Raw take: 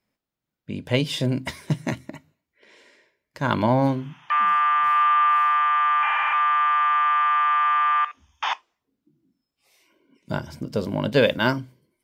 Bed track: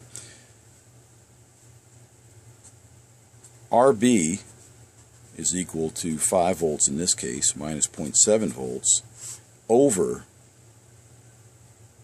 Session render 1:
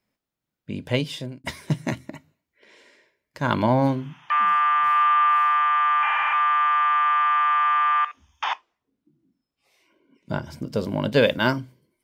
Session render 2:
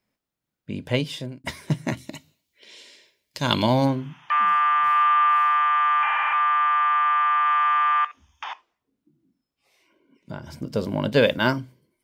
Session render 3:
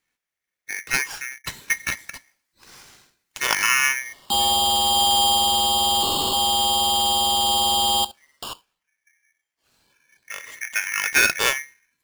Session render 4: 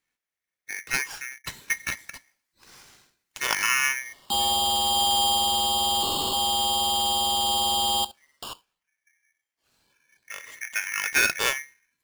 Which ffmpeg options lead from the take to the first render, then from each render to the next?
-filter_complex "[0:a]asettb=1/sr,asplit=3[a][b][c];[a]atrim=end=6.184[d];[b]atrim=start=6.18:end=7.6,asetpts=PTS-STARTPTS,afade=t=in:d=0.004:c=qsin,afade=t=out:st=1.416:d=0.004:c=qsin,highpass=260[e];[c]atrim=start=7.596[f];[d][e]acrossfade=d=0.004:c1=hsin:c2=qsin[g];[g][f]acrossfade=d=0.004:c1=qsin:c2=hsin,asettb=1/sr,asplit=3[h][i][j];[h]atrim=end=8.444[k];[i]atrim=start=8.44:end=10.47,asetpts=PTS-STARTPTS,afade=t=in:d=0.004:c=qsin,afade=t=out:st=2.026:d=0.004:c=qsin,highshelf=f=5.4k:g=-9.5[l];[j]atrim=start=10.466[m];[k][l]acrossfade=d=0.004:c1=hsin:c2=qsin[n];[n][m]acrossfade=d=0.004:c1=qsin:c2=hsin,asplit=2[o][p];[o]atrim=end=1.44,asetpts=PTS-STARTPTS,afade=t=out:st=0.86:d=0.58[q];[p]atrim=start=1.44,asetpts=PTS-STARTPTS,afade=t=in:d=0.004:c=hsin[r];[q][r]concat=n=2:v=0:a=1"
-filter_complex "[0:a]asplit=3[a][b][c];[a]afade=t=out:st=1.97:d=0.02[d];[b]highshelf=f=2.4k:t=q:w=1.5:g=10.5,afade=t=in:st=1.97:d=0.02,afade=t=out:st=3.84:d=0.02[e];[c]afade=t=in:st=3.84:d=0.02[f];[d][e][f]amix=inputs=3:normalize=0,asettb=1/sr,asplit=3[g][h][i];[g]atrim=end=6.044[j];[h]atrim=start=6.04:end=7.46,asetpts=PTS-STARTPTS,afade=t=in:d=0.004:c=qsin,afade=t=out:st=1.416:d=0.004:c=qsin,highshelf=f=5.3k:g=-6.5[k];[i]atrim=start=7.456[l];[j][k]acrossfade=d=0.004:c1=hsin:c2=qsin[m];[m][l]acrossfade=d=0.004:c1=qsin:c2=hsin,asplit=3[n][o][p];[n]afade=t=out:st=8.06:d=0.02[q];[o]acompressor=threshold=-33dB:ratio=2.5:attack=3.2:release=140:knee=1:detection=peak,afade=t=in:st=8.06:d=0.02,afade=t=out:st=10.61:d=0.02[r];[p]afade=t=in:st=10.61:d=0.02[s];[q][r][s]amix=inputs=3:normalize=0"
-af "aeval=exprs='val(0)*sgn(sin(2*PI*2000*n/s))':c=same"
-af "volume=-4dB"

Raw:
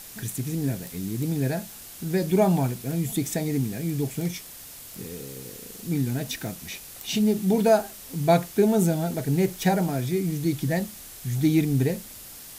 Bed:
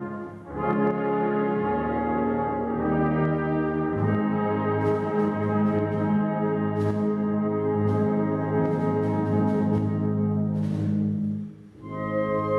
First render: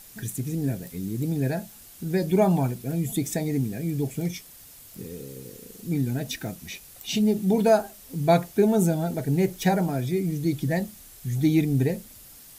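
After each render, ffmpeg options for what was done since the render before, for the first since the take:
-af "afftdn=nr=7:nf=-43"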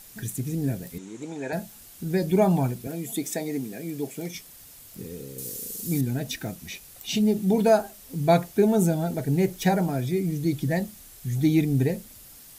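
-filter_complex "[0:a]asettb=1/sr,asplit=3[a][b][c];[a]atrim=end=0.984[d];[b]atrim=start=0.98:end=1.53,asetpts=PTS-STARTPTS,afade=t=in:d=0.004:c=qsin,afade=t=out:st=0.546:d=0.004:c=qsin,highpass=400,equalizer=f=910:t=q:w=4:g=10,equalizer=f=1.4k:t=q:w=4:g=5,equalizer=f=2.3k:t=q:w=4:g=3,equalizer=f=4.8k:t=q:w=4:g=-9,equalizer=f=7k:t=q:w=4:g=6,lowpass=f=7.3k:w=0.5412,lowpass=f=7.3k:w=1.3066[e];[c]atrim=start=1.526[f];[d][e]acrossfade=d=0.004:c1=hsin:c2=qsin[g];[g][f]acrossfade=d=0.004:c1=qsin:c2=hsin,asettb=1/sr,asplit=3[h][i][j];[h]atrim=end=2.874[k];[i]atrim=start=2.87:end=4.35,asetpts=PTS-STARTPTS,afade=t=in:d=0.004:c=qsin,afade=t=out:st=1.476:d=0.004:c=qsin,highpass=270[l];[j]atrim=start=4.346[m];[k][l]acrossfade=d=0.004:c1=hsin:c2=qsin[n];[n][m]acrossfade=d=0.004:c1=qsin:c2=hsin,asettb=1/sr,asplit=3[o][p][q];[o]atrim=end=5.384[r];[p]atrim=start=5.38:end=6.01,asetpts=PTS-STARTPTS,afade=t=in:d=0.004:c=qsin,afade=t=out:st=0.626:d=0.004:c=qsin,bass=f=250:g=0,treble=f=4k:g=13[s];[q]atrim=start=6.006[t];[r][s]acrossfade=d=0.004:c1=hsin:c2=qsin[u];[u][t]acrossfade=d=0.004:c1=qsin:c2=hsin"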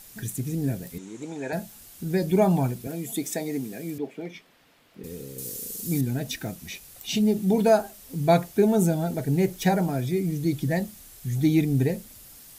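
-filter_complex "[0:a]asettb=1/sr,asplit=3[a][b][c];[a]atrim=end=3.984[d];[b]atrim=start=3.98:end=5.04,asetpts=PTS-STARTPTS,afade=t=in:d=0.004:c=qsin,afade=t=out:st=1.056:d=0.004:c=qsin,acrossover=split=180 3500:gain=0.158 1 0.0631[e][f][g];[e][f][g]amix=inputs=3:normalize=0[h];[c]atrim=start=5.036[i];[d][h]acrossfade=d=0.004:c1=hsin:c2=qsin[j];[j][i]acrossfade=d=0.004:c1=qsin:c2=hsin"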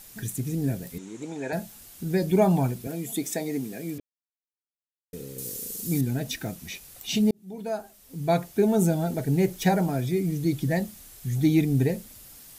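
-filter_complex "[0:a]asplit=4[a][b][c][d];[a]atrim=end=4,asetpts=PTS-STARTPTS,afade=t=out:st=3.996:d=0.004:c=hsin[e];[b]atrim=start=4:end=5.13,asetpts=PTS-STARTPTS,volume=0[f];[c]atrim=start=5.13:end=7.31,asetpts=PTS-STARTPTS,afade=t=in:d=0.004:c=hsin,afade=t=out:st=2.176:d=0.004:c=hsin[g];[d]atrim=start=7.31,asetpts=PTS-STARTPTS,afade=t=in:d=1.59[h];[e][f][g][h]concat=n=4:v=0:a=1"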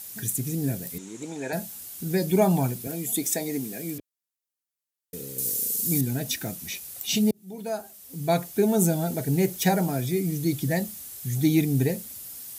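-af "highpass=70,aemphasis=mode=production:type=cd"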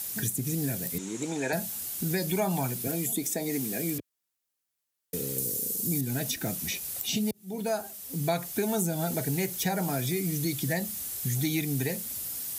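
-filter_complex "[0:a]asplit=2[a][b];[b]alimiter=limit=-20.5dB:level=0:latency=1:release=316,volume=-2dB[c];[a][c]amix=inputs=2:normalize=0,acrossover=split=100|830[d][e][f];[d]acompressor=threshold=-47dB:ratio=4[g];[e]acompressor=threshold=-30dB:ratio=4[h];[f]acompressor=threshold=-30dB:ratio=4[i];[g][h][i]amix=inputs=3:normalize=0"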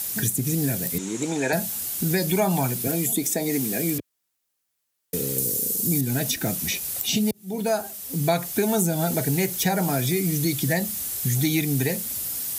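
-af "volume=6dB"

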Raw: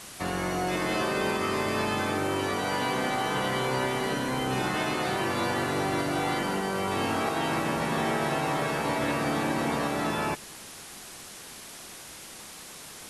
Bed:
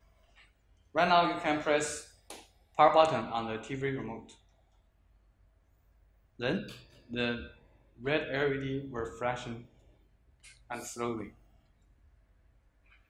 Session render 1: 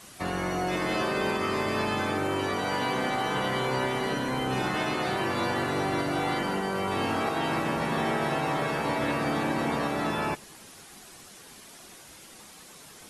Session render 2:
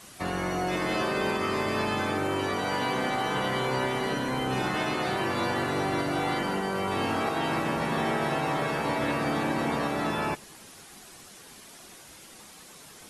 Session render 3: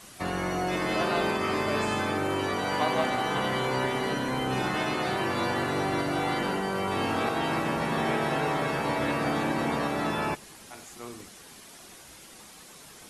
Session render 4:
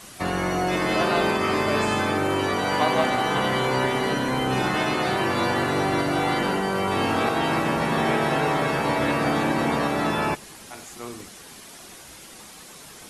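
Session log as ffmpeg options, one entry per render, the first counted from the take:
-af "afftdn=nr=7:nf=-45"
-af anull
-filter_complex "[1:a]volume=-7.5dB[a];[0:a][a]amix=inputs=2:normalize=0"
-af "volume=5dB"

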